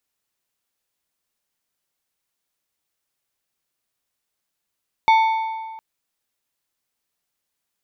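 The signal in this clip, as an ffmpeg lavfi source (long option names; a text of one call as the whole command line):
ffmpeg -f lavfi -i "aevalsrc='0.316*pow(10,-3*t/1.7)*sin(2*PI*890*t)+0.112*pow(10,-3*t/1.291)*sin(2*PI*2225*t)+0.0398*pow(10,-3*t/1.122)*sin(2*PI*3560*t)+0.0141*pow(10,-3*t/1.049)*sin(2*PI*4450*t)+0.00501*pow(10,-3*t/0.97)*sin(2*PI*5785*t)':duration=0.71:sample_rate=44100" out.wav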